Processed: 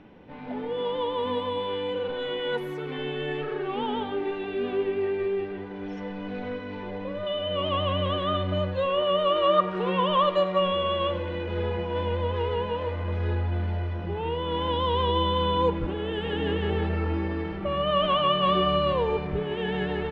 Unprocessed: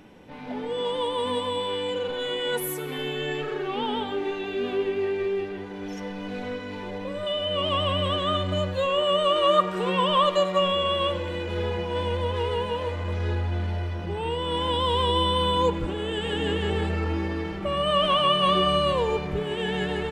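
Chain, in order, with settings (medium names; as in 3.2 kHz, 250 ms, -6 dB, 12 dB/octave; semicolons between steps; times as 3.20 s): distance through air 250 m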